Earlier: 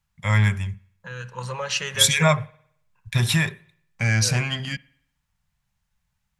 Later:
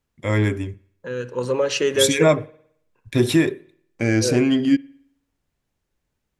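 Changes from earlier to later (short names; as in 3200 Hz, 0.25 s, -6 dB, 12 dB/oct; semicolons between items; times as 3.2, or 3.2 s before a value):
first voice -3.0 dB; master: remove EQ curve 200 Hz 0 dB, 280 Hz -29 dB, 860 Hz 0 dB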